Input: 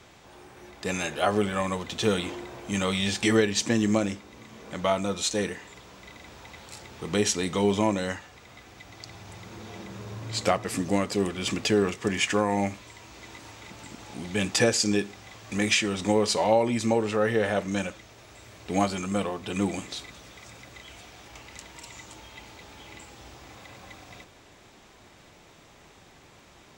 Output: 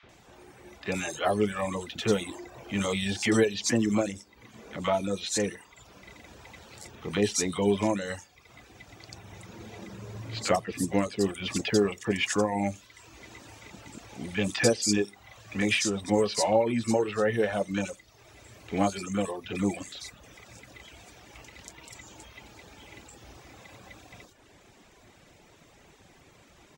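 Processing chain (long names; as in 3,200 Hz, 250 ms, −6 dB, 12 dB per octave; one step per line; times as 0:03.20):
three-band delay without the direct sound mids, lows, highs 30/90 ms, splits 1,100/4,000 Hz
reverb reduction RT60 0.75 s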